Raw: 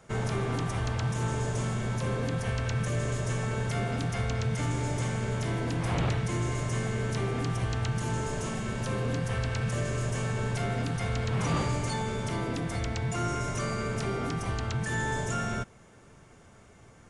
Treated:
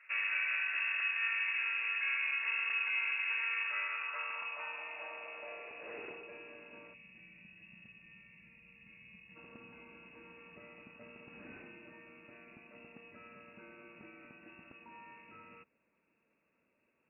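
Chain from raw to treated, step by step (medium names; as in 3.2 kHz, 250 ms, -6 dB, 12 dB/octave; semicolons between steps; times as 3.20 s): frequency inversion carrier 2.7 kHz; band-pass sweep 1.8 kHz -> 220 Hz, 3.51–7.14 s; time-frequency box 6.94–9.36 s, 220–1700 Hz -15 dB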